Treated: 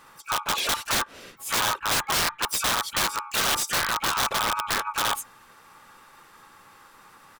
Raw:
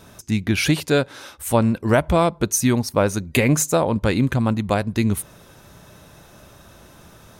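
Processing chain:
neighbouring bands swapped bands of 1,000 Hz
pitch-shifted copies added −5 semitones −3 dB, +3 semitones −9 dB, +12 semitones −15 dB
wrap-around overflow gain 10.5 dB
level −7.5 dB

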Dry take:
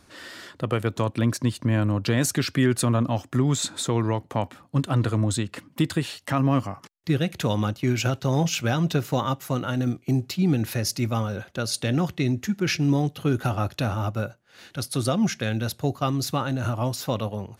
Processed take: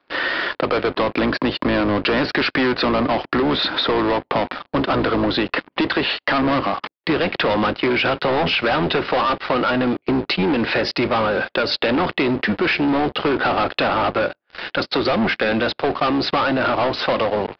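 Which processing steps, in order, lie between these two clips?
sub-octave generator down 1 octave, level −4 dB
high-pass filter 200 Hz 6 dB per octave
three-way crossover with the lows and the highs turned down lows −18 dB, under 280 Hz, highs −22 dB, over 3,400 Hz
leveller curve on the samples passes 5
downsampling to 11,025 Hz
downward compressor, threshold −22 dBFS, peak gain reduction 6.5 dB
level +5 dB

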